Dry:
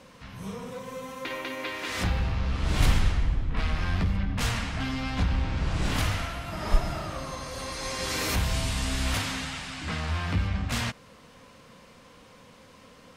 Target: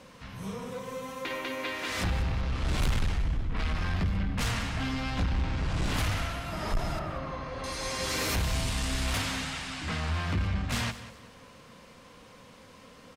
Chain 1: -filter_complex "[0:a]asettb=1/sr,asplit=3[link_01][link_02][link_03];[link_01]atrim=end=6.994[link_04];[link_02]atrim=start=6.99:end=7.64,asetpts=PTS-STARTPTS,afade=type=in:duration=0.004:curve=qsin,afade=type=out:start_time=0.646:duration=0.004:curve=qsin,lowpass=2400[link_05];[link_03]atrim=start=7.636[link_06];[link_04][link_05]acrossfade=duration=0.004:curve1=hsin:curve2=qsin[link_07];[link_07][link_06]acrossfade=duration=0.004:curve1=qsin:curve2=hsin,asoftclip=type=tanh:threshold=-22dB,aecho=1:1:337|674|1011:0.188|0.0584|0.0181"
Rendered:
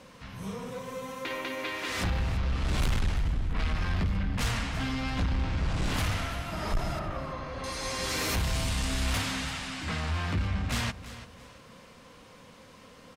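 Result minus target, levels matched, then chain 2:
echo 148 ms late
-filter_complex "[0:a]asettb=1/sr,asplit=3[link_01][link_02][link_03];[link_01]atrim=end=6.994[link_04];[link_02]atrim=start=6.99:end=7.64,asetpts=PTS-STARTPTS,afade=type=in:duration=0.004:curve=qsin,afade=type=out:start_time=0.646:duration=0.004:curve=qsin,lowpass=2400[link_05];[link_03]atrim=start=7.636[link_06];[link_04][link_05]acrossfade=duration=0.004:curve1=hsin:curve2=qsin[link_07];[link_07][link_06]acrossfade=duration=0.004:curve1=qsin:curve2=hsin,asoftclip=type=tanh:threshold=-22dB,aecho=1:1:189|378|567:0.188|0.0584|0.0181"

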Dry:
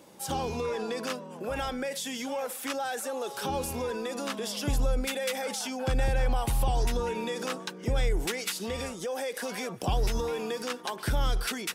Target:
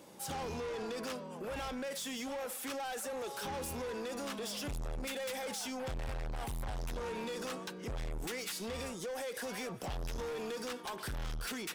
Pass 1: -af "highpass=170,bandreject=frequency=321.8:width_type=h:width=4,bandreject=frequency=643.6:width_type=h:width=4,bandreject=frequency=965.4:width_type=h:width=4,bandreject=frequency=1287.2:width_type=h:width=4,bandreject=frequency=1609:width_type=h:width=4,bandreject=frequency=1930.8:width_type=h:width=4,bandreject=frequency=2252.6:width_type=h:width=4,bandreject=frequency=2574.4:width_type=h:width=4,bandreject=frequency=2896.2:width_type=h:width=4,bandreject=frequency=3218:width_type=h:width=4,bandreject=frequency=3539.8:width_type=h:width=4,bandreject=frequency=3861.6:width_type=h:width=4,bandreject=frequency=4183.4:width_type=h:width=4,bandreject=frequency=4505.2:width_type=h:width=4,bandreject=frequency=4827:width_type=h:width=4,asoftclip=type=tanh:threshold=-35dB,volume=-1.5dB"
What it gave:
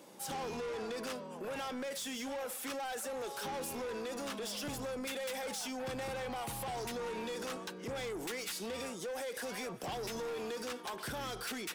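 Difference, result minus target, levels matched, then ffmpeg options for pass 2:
125 Hz band −6.0 dB
-af "bandreject=frequency=321.8:width_type=h:width=4,bandreject=frequency=643.6:width_type=h:width=4,bandreject=frequency=965.4:width_type=h:width=4,bandreject=frequency=1287.2:width_type=h:width=4,bandreject=frequency=1609:width_type=h:width=4,bandreject=frequency=1930.8:width_type=h:width=4,bandreject=frequency=2252.6:width_type=h:width=4,bandreject=frequency=2574.4:width_type=h:width=4,bandreject=frequency=2896.2:width_type=h:width=4,bandreject=frequency=3218:width_type=h:width=4,bandreject=frequency=3539.8:width_type=h:width=4,bandreject=frequency=3861.6:width_type=h:width=4,bandreject=frequency=4183.4:width_type=h:width=4,bandreject=frequency=4505.2:width_type=h:width=4,bandreject=frequency=4827:width_type=h:width=4,asoftclip=type=tanh:threshold=-35dB,volume=-1.5dB"

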